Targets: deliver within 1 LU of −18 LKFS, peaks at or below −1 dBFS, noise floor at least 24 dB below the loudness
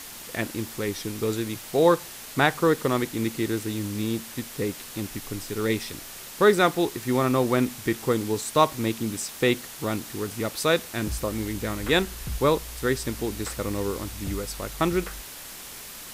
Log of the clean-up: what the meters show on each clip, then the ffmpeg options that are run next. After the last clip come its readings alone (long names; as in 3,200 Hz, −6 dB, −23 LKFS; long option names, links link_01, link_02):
background noise floor −41 dBFS; target noise floor −50 dBFS; integrated loudness −26.0 LKFS; sample peak −5.0 dBFS; target loudness −18.0 LKFS
→ -af "afftdn=noise_reduction=9:noise_floor=-41"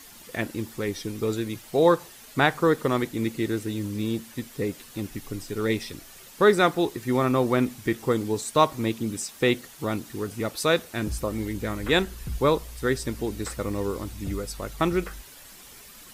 background noise floor −47 dBFS; target noise floor −51 dBFS
→ -af "afftdn=noise_reduction=6:noise_floor=-47"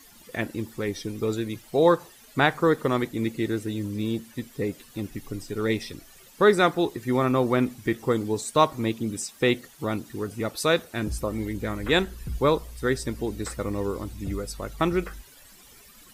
background noise floor −52 dBFS; integrated loudness −26.5 LKFS; sample peak −5.0 dBFS; target loudness −18.0 LKFS
→ -af "volume=8.5dB,alimiter=limit=-1dB:level=0:latency=1"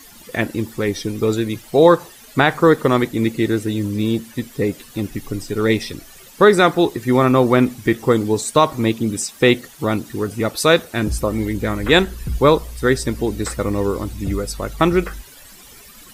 integrated loudness −18.5 LKFS; sample peak −1.0 dBFS; background noise floor −43 dBFS